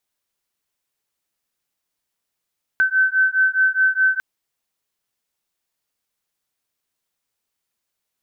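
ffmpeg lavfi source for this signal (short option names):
-f lavfi -i "aevalsrc='0.133*(sin(2*PI*1530*t)+sin(2*PI*1534.8*t))':d=1.4:s=44100"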